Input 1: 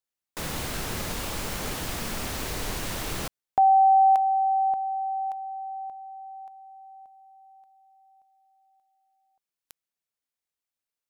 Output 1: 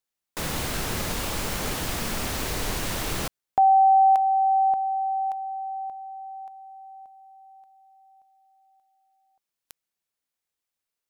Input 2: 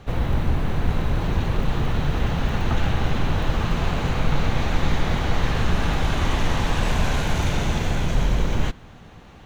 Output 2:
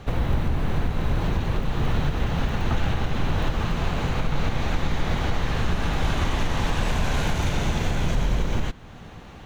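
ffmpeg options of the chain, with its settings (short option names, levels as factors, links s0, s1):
-af "alimiter=limit=0.158:level=0:latency=1:release=409,volume=1.41"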